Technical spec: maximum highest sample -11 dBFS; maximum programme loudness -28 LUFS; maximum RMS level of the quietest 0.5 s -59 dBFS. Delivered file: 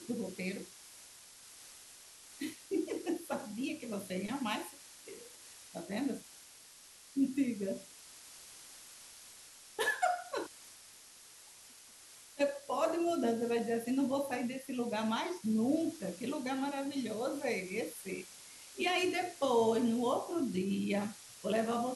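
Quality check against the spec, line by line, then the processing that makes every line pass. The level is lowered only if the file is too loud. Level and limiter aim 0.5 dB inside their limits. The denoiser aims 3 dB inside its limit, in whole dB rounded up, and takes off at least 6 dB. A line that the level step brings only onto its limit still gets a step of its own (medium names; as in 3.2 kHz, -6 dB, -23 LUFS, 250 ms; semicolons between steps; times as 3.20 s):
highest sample -18.5 dBFS: pass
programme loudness -35.5 LUFS: pass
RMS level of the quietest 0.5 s -57 dBFS: fail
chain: noise reduction 6 dB, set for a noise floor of -57 dBFS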